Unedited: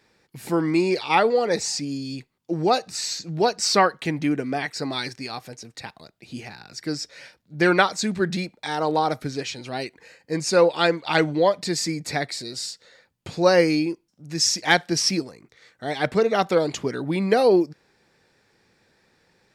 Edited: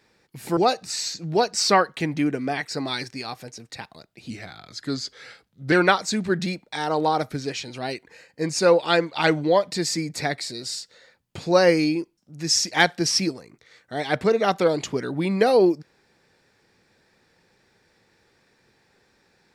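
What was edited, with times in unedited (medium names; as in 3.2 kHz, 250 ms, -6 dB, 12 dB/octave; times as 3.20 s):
0.57–2.62 s: delete
6.35–7.63 s: speed 90%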